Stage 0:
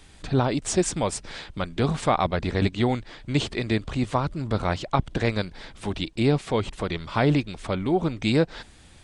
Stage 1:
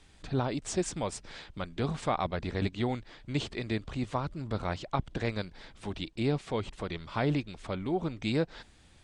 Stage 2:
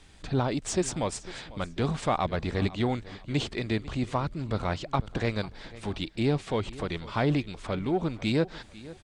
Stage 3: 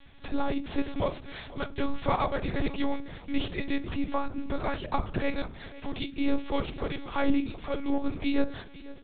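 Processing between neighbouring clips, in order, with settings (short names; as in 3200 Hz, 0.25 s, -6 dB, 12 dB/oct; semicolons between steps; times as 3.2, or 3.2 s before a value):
LPF 9200 Hz 12 dB/oct; gain -8 dB
feedback echo 0.497 s, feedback 28%, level -19.5 dB; in parallel at -10.5 dB: hard clip -30.5 dBFS, distortion -8 dB; on the sum: gain +2 dB
reverb, pre-delay 6 ms, DRR 9.5 dB; monotone LPC vocoder at 8 kHz 280 Hz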